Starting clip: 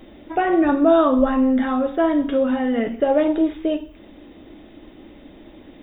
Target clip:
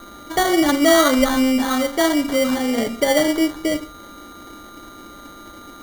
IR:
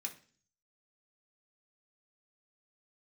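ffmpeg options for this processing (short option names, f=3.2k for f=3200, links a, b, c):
-af "crystalizer=i=4.5:c=0,aeval=exprs='val(0)+0.01*sin(2*PI*1200*n/s)':c=same,acrusher=samples=17:mix=1:aa=0.000001"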